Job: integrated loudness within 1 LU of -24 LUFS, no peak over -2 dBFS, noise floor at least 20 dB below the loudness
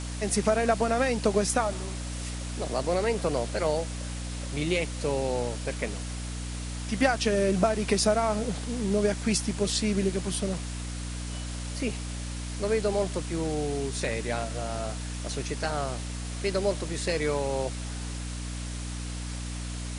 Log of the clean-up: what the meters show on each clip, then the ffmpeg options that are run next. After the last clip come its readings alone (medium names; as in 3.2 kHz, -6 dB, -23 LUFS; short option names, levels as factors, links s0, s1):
hum 60 Hz; highest harmonic 300 Hz; hum level -33 dBFS; noise floor -35 dBFS; noise floor target -49 dBFS; loudness -29.0 LUFS; peak level -9.0 dBFS; loudness target -24.0 LUFS
-> -af "bandreject=f=60:t=h:w=6,bandreject=f=120:t=h:w=6,bandreject=f=180:t=h:w=6,bandreject=f=240:t=h:w=6,bandreject=f=300:t=h:w=6"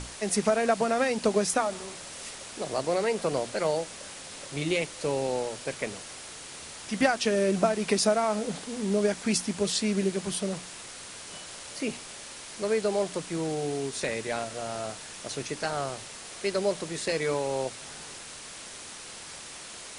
hum not found; noise floor -43 dBFS; noise floor target -49 dBFS
-> -af "afftdn=nr=6:nf=-43"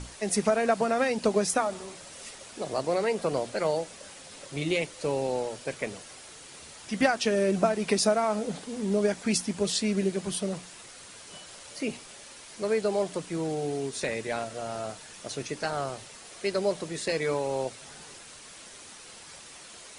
noise floor -48 dBFS; noise floor target -49 dBFS
-> -af "afftdn=nr=6:nf=-48"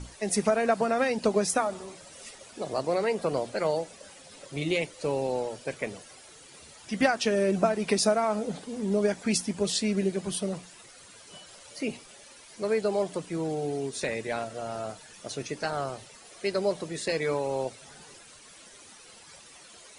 noise floor -51 dBFS; loudness -29.0 LUFS; peak level -10.0 dBFS; loudness target -24.0 LUFS
-> -af "volume=1.78"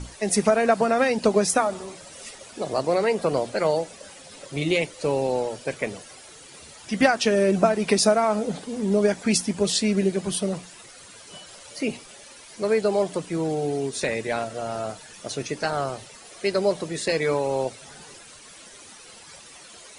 loudness -24.0 LUFS; peak level -5.0 dBFS; noise floor -46 dBFS